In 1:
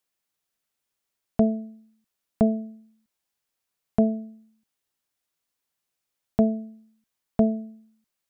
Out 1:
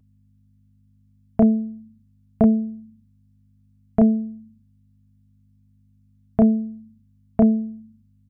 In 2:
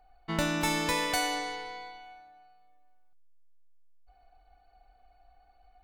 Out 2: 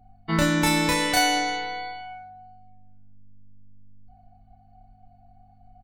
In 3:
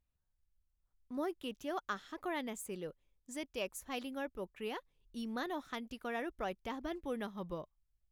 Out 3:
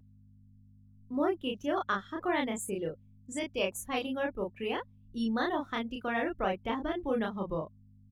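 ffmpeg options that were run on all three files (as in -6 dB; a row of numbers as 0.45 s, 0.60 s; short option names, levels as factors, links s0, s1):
-filter_complex "[0:a]afftdn=nr=16:nf=-52,asplit=2[s0][s1];[s1]alimiter=limit=0.119:level=0:latency=1:release=490,volume=1.06[s2];[s0][s2]amix=inputs=2:normalize=0,aeval=exprs='val(0)+0.00158*(sin(2*PI*50*n/s)+sin(2*PI*2*50*n/s)/2+sin(2*PI*3*50*n/s)/3+sin(2*PI*4*50*n/s)/4+sin(2*PI*5*50*n/s)/5)':c=same,asplit=2[s3][s4];[s4]adelay=31,volume=0.794[s5];[s3][s5]amix=inputs=2:normalize=0"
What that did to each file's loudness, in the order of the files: +5.0 LU, +7.5 LU, +8.5 LU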